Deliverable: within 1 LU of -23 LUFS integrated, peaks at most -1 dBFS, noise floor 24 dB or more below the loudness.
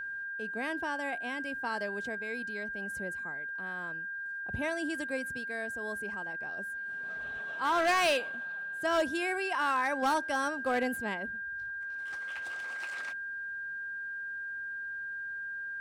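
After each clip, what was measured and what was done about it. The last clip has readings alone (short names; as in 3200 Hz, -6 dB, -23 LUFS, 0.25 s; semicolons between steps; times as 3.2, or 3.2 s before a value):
clipped 0.7%; flat tops at -23.0 dBFS; steady tone 1600 Hz; tone level -36 dBFS; loudness -33.5 LUFS; peak -23.0 dBFS; loudness target -23.0 LUFS
-> clip repair -23 dBFS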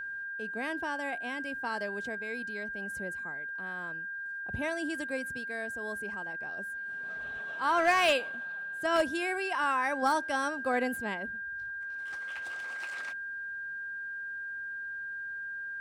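clipped 0.0%; steady tone 1600 Hz; tone level -36 dBFS
-> notch 1600 Hz, Q 30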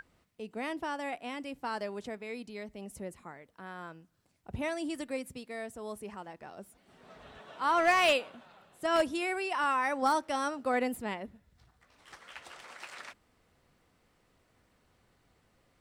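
steady tone none; loudness -32.5 LUFS; peak -14.0 dBFS; loudness target -23.0 LUFS
-> gain +9.5 dB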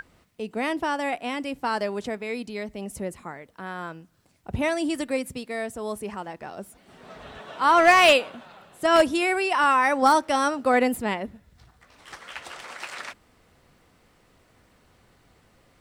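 loudness -23.0 LUFS; peak -4.5 dBFS; noise floor -61 dBFS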